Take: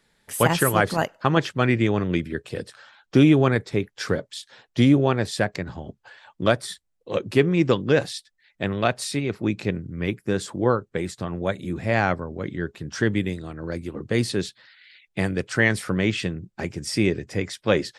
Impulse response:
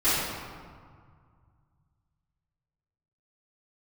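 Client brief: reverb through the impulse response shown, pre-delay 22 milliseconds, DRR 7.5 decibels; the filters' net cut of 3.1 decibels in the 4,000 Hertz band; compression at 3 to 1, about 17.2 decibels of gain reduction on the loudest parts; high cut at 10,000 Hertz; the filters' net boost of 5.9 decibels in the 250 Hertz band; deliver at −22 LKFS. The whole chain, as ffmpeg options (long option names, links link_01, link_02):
-filter_complex "[0:a]lowpass=10000,equalizer=frequency=250:width_type=o:gain=7.5,equalizer=frequency=4000:width_type=o:gain=-4,acompressor=threshold=-31dB:ratio=3,asplit=2[link_01][link_02];[1:a]atrim=start_sample=2205,adelay=22[link_03];[link_02][link_03]afir=irnorm=-1:irlink=0,volume=-23dB[link_04];[link_01][link_04]amix=inputs=2:normalize=0,volume=10.5dB"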